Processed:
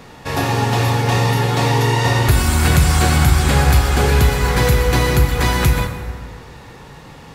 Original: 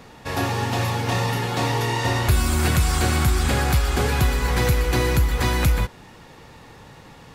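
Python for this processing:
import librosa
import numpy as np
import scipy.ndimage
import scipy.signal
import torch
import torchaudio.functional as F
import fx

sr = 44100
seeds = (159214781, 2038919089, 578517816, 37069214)

y = fx.rev_plate(x, sr, seeds[0], rt60_s=2.0, hf_ratio=0.55, predelay_ms=0, drr_db=5.0)
y = y * librosa.db_to_amplitude(4.5)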